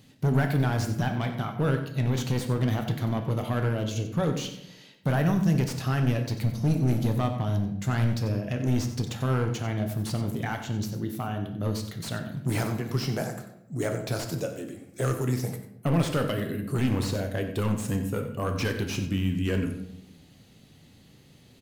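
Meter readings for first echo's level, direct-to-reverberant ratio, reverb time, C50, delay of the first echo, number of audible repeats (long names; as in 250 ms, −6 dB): −12.5 dB, 4.0 dB, 0.80 s, 7.5 dB, 92 ms, 1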